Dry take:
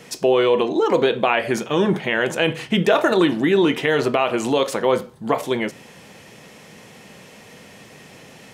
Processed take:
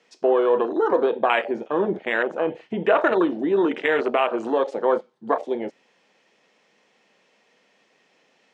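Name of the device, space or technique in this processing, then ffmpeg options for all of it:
over-cleaned archive recording: -filter_complex "[0:a]lowpass=6.5k,asettb=1/sr,asplit=3[a][b][c];[a]atrim=end=1.444[d];[b]atrim=start=1.44:end=2.97,asetpts=PTS-STARTPTS,afade=t=in:d=0.004:c=qsin,afade=t=out:st=1.526:d=0.004:c=qsin,acrossover=split=2800[e][f];[f]acompressor=threshold=-44dB:ratio=4:attack=1:release=60[g];[e][g]amix=inputs=2:normalize=0[h];[c]atrim=start=2.966[i];[d][h]acrossfade=d=0.004:c1=hsin:c2=qsin[j];[j][i]acrossfade=d=0.004:c1=qsin:c2=hsin,highpass=150,lowpass=7.5k,highpass=220,afwtdn=0.0708,lowshelf=f=270:g=-7"

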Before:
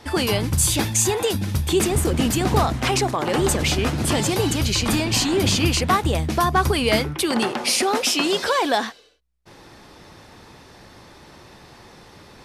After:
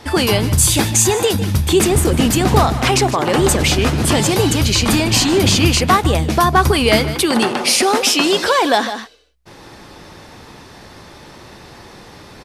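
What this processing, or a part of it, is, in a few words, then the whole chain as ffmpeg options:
ducked delay: -filter_complex "[0:a]asplit=3[a][b][c];[b]adelay=152,volume=-7dB[d];[c]apad=whole_len=555433[e];[d][e]sidechaincompress=threshold=-30dB:ratio=4:attack=16:release=171[f];[a][f]amix=inputs=2:normalize=0,volume=6dB"

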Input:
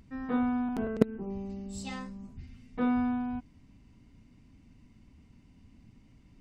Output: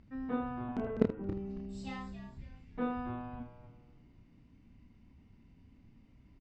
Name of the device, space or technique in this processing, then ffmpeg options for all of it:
slapback doubling: -filter_complex "[0:a]lowpass=5.7k,highshelf=f=4.2k:g=-7,asplit=3[a][b][c];[b]adelay=30,volume=-4.5dB[d];[c]adelay=79,volume=-11dB[e];[a][d][e]amix=inputs=3:normalize=0,asplit=5[f][g][h][i][j];[g]adelay=275,afreqshift=-130,volume=-12dB[k];[h]adelay=550,afreqshift=-260,volume=-21.1dB[l];[i]adelay=825,afreqshift=-390,volume=-30.2dB[m];[j]adelay=1100,afreqshift=-520,volume=-39.4dB[n];[f][k][l][m][n]amix=inputs=5:normalize=0,volume=-4.5dB"

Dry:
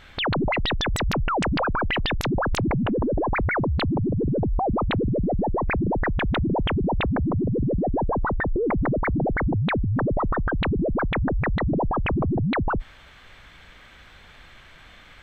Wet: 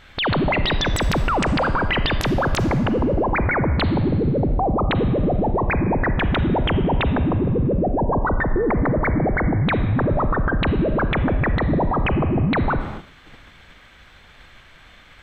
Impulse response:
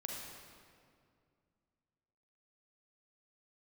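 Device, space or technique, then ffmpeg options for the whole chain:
keyed gated reverb: -filter_complex "[0:a]asplit=3[a][b][c];[1:a]atrim=start_sample=2205[d];[b][d]afir=irnorm=-1:irlink=0[e];[c]apad=whole_len=671358[f];[e][f]sidechaingate=range=-33dB:threshold=-45dB:ratio=16:detection=peak,volume=-3dB[g];[a][g]amix=inputs=2:normalize=0"

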